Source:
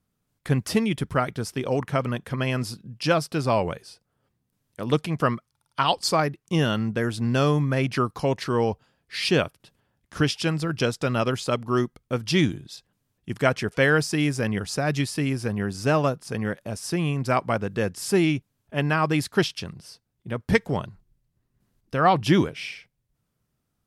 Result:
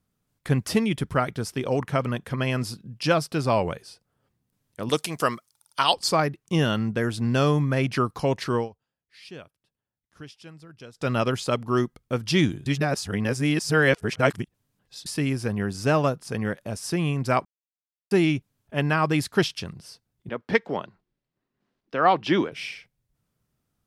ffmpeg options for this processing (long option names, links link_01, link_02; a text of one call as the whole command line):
ffmpeg -i in.wav -filter_complex "[0:a]asettb=1/sr,asplit=3[link_01][link_02][link_03];[link_01]atrim=end=4.894[link_04];[link_02]atrim=start=4.89:end=5.94,asetpts=PTS-STARTPTS,afade=type=in:duration=0.004:curve=qsin,afade=type=out:start_time=1.046:duration=0.004:curve=qsin,bass=frequency=250:gain=-10,treble=frequency=4000:gain=13[link_05];[link_03]atrim=start=5.936[link_06];[link_04][link_05]acrossfade=duration=0.004:curve1=hsin:curve2=qsin[link_07];[link_07][link_06]acrossfade=duration=0.004:curve1=qsin:curve2=hsin,asettb=1/sr,asplit=3[link_08][link_09][link_10];[link_08]atrim=end=20.294[link_11];[link_09]atrim=start=20.29:end=22.52,asetpts=PTS-STARTPTS,afade=type=in:duration=0.004:curve=qsin,afade=type=out:start_time=2.226:duration=0.004:curve=qsin,acrossover=split=210 5100:gain=0.1 1 0.0631[link_12][link_13][link_14];[link_12][link_13][link_14]amix=inputs=3:normalize=0[link_15];[link_10]atrim=start=22.516[link_16];[link_11][link_15]acrossfade=duration=0.004:curve1=hsin:curve2=qsin[link_17];[link_17][link_16]acrossfade=duration=0.004:curve1=qsin:curve2=hsin,asplit=7[link_18][link_19][link_20][link_21][link_22][link_23][link_24];[link_18]atrim=end=8.69,asetpts=PTS-STARTPTS,afade=type=out:start_time=8.55:duration=0.14:silence=0.0944061[link_25];[link_19]atrim=start=8.69:end=10.94,asetpts=PTS-STARTPTS,volume=-20.5dB[link_26];[link_20]atrim=start=10.94:end=12.662,asetpts=PTS-STARTPTS,afade=type=in:duration=0.14:silence=0.0944061[link_27];[link_21]atrim=start=12.658:end=15.062,asetpts=PTS-STARTPTS,areverse[link_28];[link_22]atrim=start=15.058:end=17.45,asetpts=PTS-STARTPTS,afade=type=out:start_time=2.388:duration=0.004:curve=hsin[link_29];[link_23]atrim=start=17.45:end=18.11,asetpts=PTS-STARTPTS,volume=0[link_30];[link_24]atrim=start=18.11,asetpts=PTS-STARTPTS,afade=type=in:duration=0.004:curve=hsin[link_31];[link_25][link_26][link_27]concat=n=3:v=0:a=1[link_32];[link_32][link_28]acrossfade=duration=0.004:curve1=hsin:curve2=hsin[link_33];[link_29][link_30][link_31]concat=n=3:v=0:a=1[link_34];[link_33][link_34]acrossfade=duration=0.004:curve1=hsin:curve2=hsin" out.wav